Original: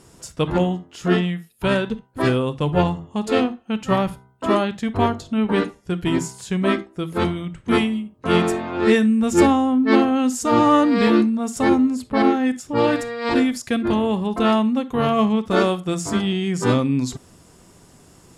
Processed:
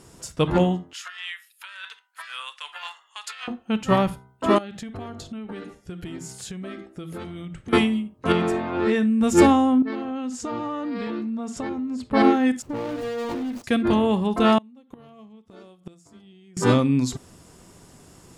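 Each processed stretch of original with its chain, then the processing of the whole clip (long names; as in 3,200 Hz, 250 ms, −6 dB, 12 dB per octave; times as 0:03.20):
0:00.93–0:03.48: high-pass filter 1,400 Hz 24 dB per octave + high-shelf EQ 4,300 Hz −4 dB + compressor whose output falls as the input rises −37 dBFS
0:04.58–0:07.73: notch filter 990 Hz, Q 6.6 + downward compressor 12 to 1, threshold −31 dBFS
0:08.32–0:09.21: high-shelf EQ 5,600 Hz −10 dB + downward compressor 2.5 to 1, threshold −19 dBFS
0:09.82–0:12.11: downward compressor 12 to 1, threshold −25 dBFS + high-frequency loss of the air 80 metres
0:12.62–0:13.64: running median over 25 samples + downward compressor 16 to 1, threshold −27 dBFS + leveller curve on the samples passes 1
0:14.58–0:16.57: dynamic equaliser 1,400 Hz, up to −5 dB, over −35 dBFS, Q 0.92 + gate with flip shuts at −18 dBFS, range −28 dB
whole clip: no processing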